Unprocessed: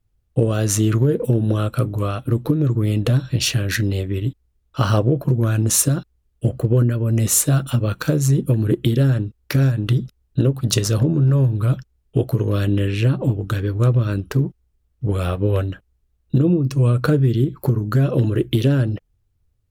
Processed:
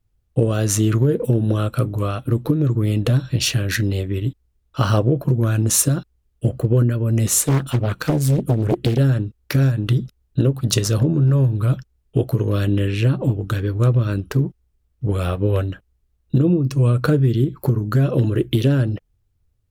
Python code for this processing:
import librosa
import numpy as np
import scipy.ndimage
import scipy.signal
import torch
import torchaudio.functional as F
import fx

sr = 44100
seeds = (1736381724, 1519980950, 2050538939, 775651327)

y = fx.doppler_dist(x, sr, depth_ms=0.88, at=(7.27, 8.98))